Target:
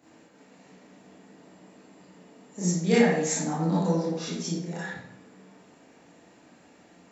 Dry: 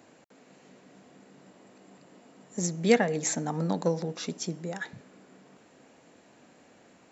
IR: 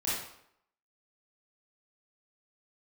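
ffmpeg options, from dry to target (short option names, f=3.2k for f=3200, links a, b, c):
-filter_complex "[1:a]atrim=start_sample=2205[a];[0:a][a]afir=irnorm=-1:irlink=0,volume=-4.5dB"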